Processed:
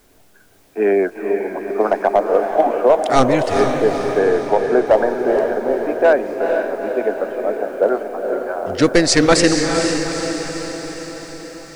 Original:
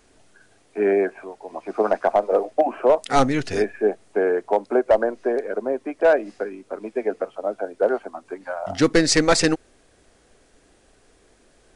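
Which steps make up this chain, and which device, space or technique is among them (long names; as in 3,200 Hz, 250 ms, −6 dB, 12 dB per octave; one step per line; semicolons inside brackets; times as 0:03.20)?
plain cassette with noise reduction switched in (one half of a high-frequency compander decoder only; tape wow and flutter; white noise bed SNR 40 dB)
0:04.18–0:04.87: low-pass filter 3,900 Hz
feedback delay with all-pass diffusion 454 ms, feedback 60%, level −5 dB
level +3.5 dB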